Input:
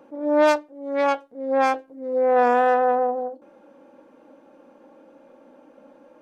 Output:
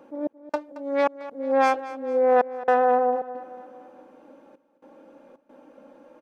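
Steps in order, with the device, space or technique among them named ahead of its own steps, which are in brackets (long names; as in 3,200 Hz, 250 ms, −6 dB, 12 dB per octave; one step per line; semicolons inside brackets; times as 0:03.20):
trance gate with a delay (gate pattern "xx..xxxx.xxxxxxx" 112 BPM −60 dB; repeating echo 223 ms, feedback 53%, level −16 dB)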